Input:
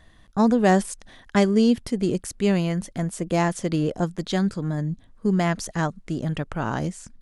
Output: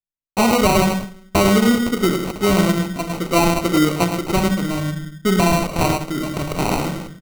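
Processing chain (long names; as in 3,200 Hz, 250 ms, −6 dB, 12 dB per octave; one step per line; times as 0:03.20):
parametric band 1,600 Hz +7.5 dB 1.5 octaves
single-tap delay 106 ms −7 dB
noise gate −37 dBFS, range −59 dB
in parallel at −2 dB: output level in coarse steps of 21 dB
on the sum: low-shelf EQ 370 Hz −4 dB
on a send at −5.5 dB: convolution reverb RT60 0.55 s, pre-delay 3 ms
on the sum: decimation without filtering 26×
brickwall limiter −10.5 dBFS, peak gain reduction 9 dB
level +3 dB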